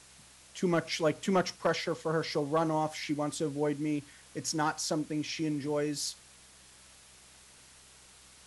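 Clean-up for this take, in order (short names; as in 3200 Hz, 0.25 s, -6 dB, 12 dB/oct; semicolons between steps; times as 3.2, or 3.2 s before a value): clip repair -18 dBFS; de-hum 64.3 Hz, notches 3; noise print and reduce 21 dB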